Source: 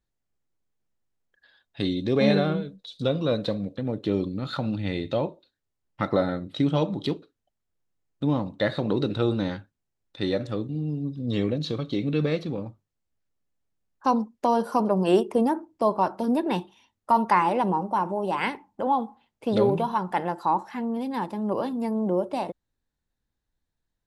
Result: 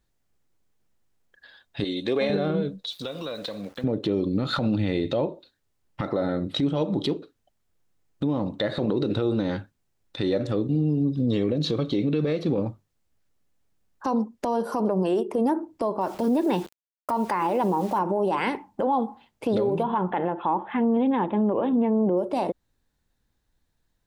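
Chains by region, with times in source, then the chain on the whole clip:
1.84–2.30 s: high-pass 920 Hz 6 dB/octave + peaking EQ 5.4 kHz -10.5 dB 0.4 oct
2.90–3.84 s: high-pass 920 Hz 6 dB/octave + compression, threshold -38 dBFS + small samples zeroed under -57.5 dBFS
16.01–17.99 s: high-pass 48 Hz 6 dB/octave + word length cut 8-bit, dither none
19.83–22.17 s: distance through air 120 m + careless resampling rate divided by 6×, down none, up filtered
whole clip: dynamic bell 400 Hz, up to +6 dB, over -36 dBFS, Q 0.82; compression 5:1, threshold -27 dBFS; peak limiter -24 dBFS; trim +8.5 dB

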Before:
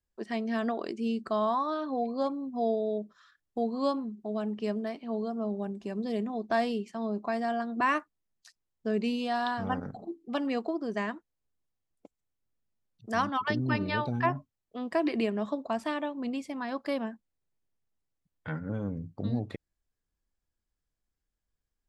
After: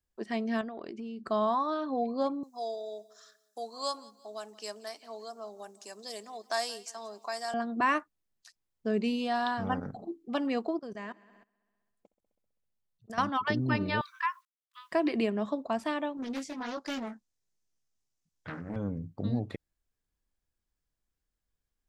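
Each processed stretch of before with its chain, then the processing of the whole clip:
0.61–1.25 s: distance through air 94 m + compression 10:1, threshold -36 dBFS
2.43–7.54 s: high-pass 800 Hz + resonant high shelf 4.2 kHz +14 dB, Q 1.5 + feedback delay 176 ms, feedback 39%, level -21 dB
10.79–13.18 s: peaking EQ 290 Hz -11 dB 0.28 oct + multi-head delay 65 ms, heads all three, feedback 41%, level -21 dB + level held to a coarse grid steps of 20 dB
14.01–14.92 s: word length cut 12-bit, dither none + brick-wall FIR high-pass 980 Hz
16.17–18.76 s: peaking EQ 6.1 kHz +13 dB 1.1 oct + chorus 1.4 Hz, delay 18.5 ms, depth 5.3 ms + loudspeaker Doppler distortion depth 0.52 ms
whole clip: none

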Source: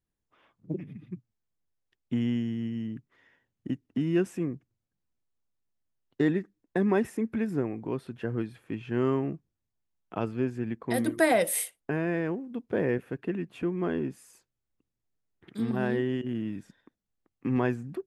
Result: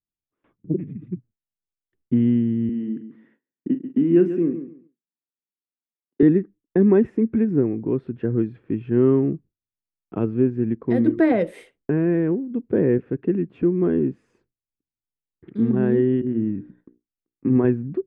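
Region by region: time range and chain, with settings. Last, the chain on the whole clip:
2.69–6.23 s: high-pass 190 Hz 24 dB/octave + doubling 42 ms -11 dB + feedback delay 139 ms, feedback 21%, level -11 dB
16.20–17.65 s: low-pass 2.2 kHz + hum notches 60/120/180/240/300/360/420/480 Hz
whole clip: gate with hold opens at -52 dBFS; low-pass 2.1 kHz 12 dB/octave; resonant low shelf 520 Hz +8.5 dB, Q 1.5

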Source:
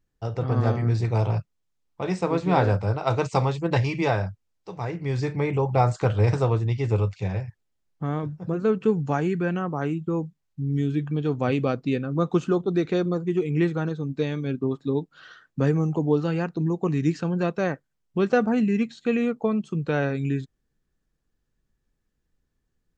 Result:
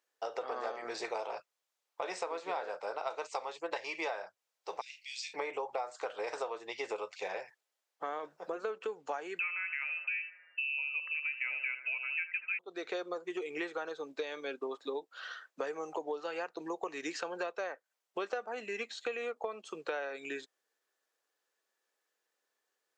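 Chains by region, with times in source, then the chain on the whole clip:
4.81–5.34 s: steep high-pass 2.5 kHz 48 dB/octave + doubling 35 ms -10 dB
9.39–12.59 s: peaking EQ 690 Hz +9.5 dB 1.5 oct + thinning echo 77 ms, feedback 71%, high-pass 1.1 kHz, level -9.5 dB + frequency inversion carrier 2.8 kHz
whole clip: high-pass 500 Hz 24 dB/octave; compression 10:1, threshold -37 dBFS; trim +3 dB

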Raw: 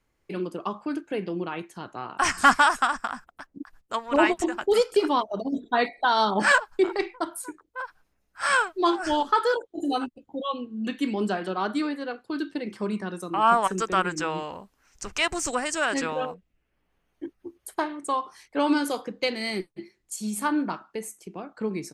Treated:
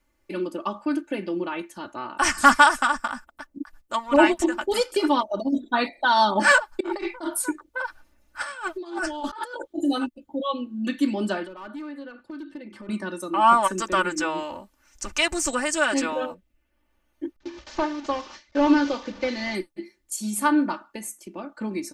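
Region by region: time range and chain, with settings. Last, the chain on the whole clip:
6.80–9.73 s: treble shelf 9.3 kHz -5.5 dB + compressor with a negative ratio -34 dBFS
11.44–12.89 s: overload inside the chain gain 23.5 dB + tone controls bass +2 dB, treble -9 dB + compression 10:1, threshold -38 dBFS
17.36–19.55 s: one-bit delta coder 32 kbps, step -38 dBFS + gate with hold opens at -36 dBFS, closes at -41 dBFS
whole clip: treble shelf 9.1 kHz +4.5 dB; comb 3.4 ms, depth 79%

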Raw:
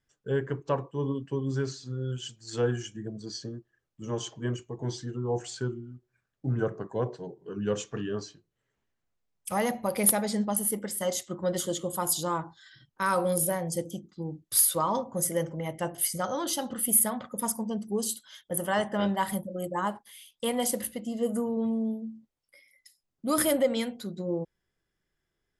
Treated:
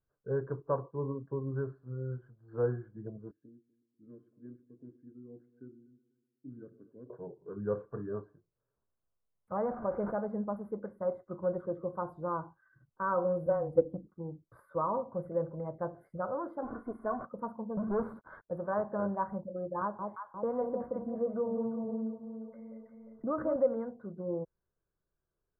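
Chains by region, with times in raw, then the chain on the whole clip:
3.31–7.10 s: vowel filter i + bass shelf 74 Hz +7 dB + multi-head delay 123 ms, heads first and second, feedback 45%, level -22 dB
9.65–10.16 s: one-bit delta coder 64 kbps, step -29 dBFS + band-stop 1.1 kHz, Q 16
13.46–14.07 s: frequency shift -17 Hz + comb 3.9 ms, depth 60% + transient shaper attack +9 dB, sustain +3 dB
16.62–17.25 s: jump at every zero crossing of -34.5 dBFS + low-pass 8.8 kHz 24 dB/octave + comb 2.8 ms, depth 82%
17.77–18.43 s: peaking EQ 2.7 kHz -14.5 dB 0.28 oct + waveshaping leveller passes 5 + compression 3:1, threshold -25 dBFS
19.81–23.56 s: echo whose repeats swap between lows and highs 176 ms, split 1 kHz, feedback 52%, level -4 dB + three bands compressed up and down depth 70%
whole clip: elliptic low-pass 1.4 kHz, stop band 50 dB; comb 1.9 ms, depth 30%; trim -4.5 dB

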